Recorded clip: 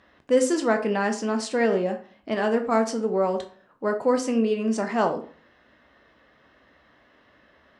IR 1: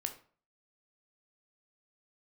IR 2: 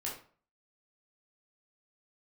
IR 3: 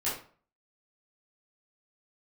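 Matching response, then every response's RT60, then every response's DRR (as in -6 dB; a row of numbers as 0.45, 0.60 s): 1; 0.45, 0.45, 0.45 s; 5.0, -5.0, -10.5 dB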